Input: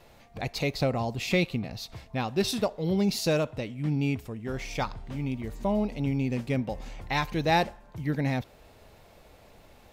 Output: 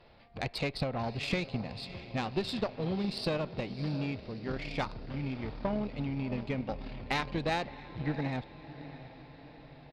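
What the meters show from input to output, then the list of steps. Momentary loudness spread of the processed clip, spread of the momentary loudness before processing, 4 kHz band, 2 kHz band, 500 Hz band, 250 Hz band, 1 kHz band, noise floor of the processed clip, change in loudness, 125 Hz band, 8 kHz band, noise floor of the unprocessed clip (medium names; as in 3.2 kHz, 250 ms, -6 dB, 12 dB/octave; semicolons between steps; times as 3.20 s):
14 LU, 10 LU, -4.5 dB, -4.5 dB, -6.0 dB, -6.0 dB, -6.0 dB, -54 dBFS, -5.5 dB, -5.5 dB, -13.5 dB, -55 dBFS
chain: resampled via 11.025 kHz; compression 6:1, threshold -27 dBFS, peak gain reduction 8.5 dB; on a send: echo that smears into a reverb 654 ms, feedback 57%, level -12.5 dB; on the sum: Chebyshev shaper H 2 -12 dB, 6 -29 dB, 7 -26 dB, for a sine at -16 dBFS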